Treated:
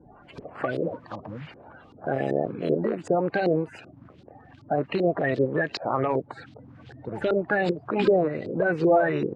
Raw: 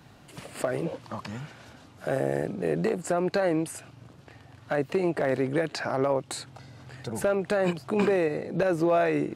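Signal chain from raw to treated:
spectral magnitudes quantised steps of 30 dB
auto-filter low-pass saw up 2.6 Hz 370–4,400 Hz

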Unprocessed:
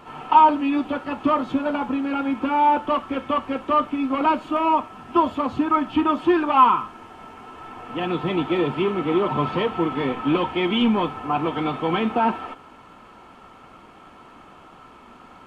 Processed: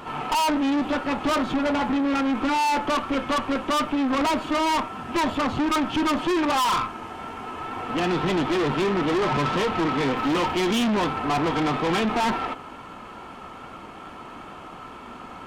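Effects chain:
tube saturation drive 29 dB, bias 0.5
0:10.16–0:10.67: surface crackle 230 per second → 85 per second −46 dBFS
tape wow and flutter 28 cents
level +8.5 dB

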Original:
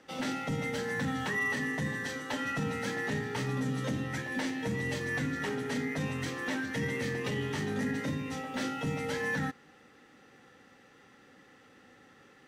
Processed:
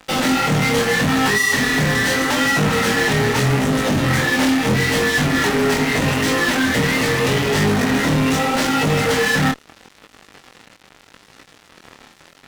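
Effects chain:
fuzz pedal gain 44 dB, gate −53 dBFS
chorus effect 0.79 Hz, delay 19 ms, depth 7.8 ms

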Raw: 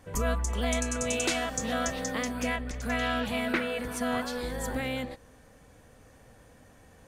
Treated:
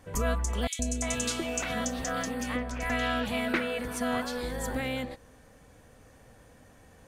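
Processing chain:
0:00.67–0:02.90: three-band delay without the direct sound highs, lows, mids 120/350 ms, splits 550/2,700 Hz

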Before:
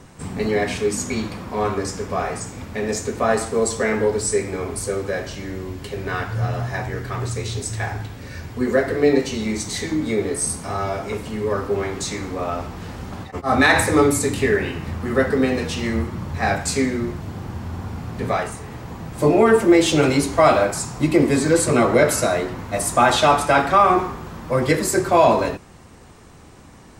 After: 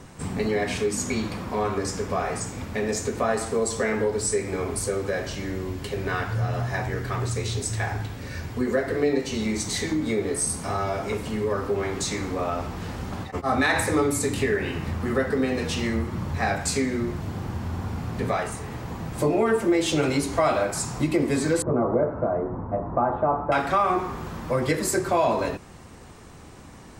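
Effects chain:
0:21.62–0:23.52: low-pass filter 1,100 Hz 24 dB per octave
downward compressor 2 to 1, threshold −24 dBFS, peak gain reduction 8.5 dB

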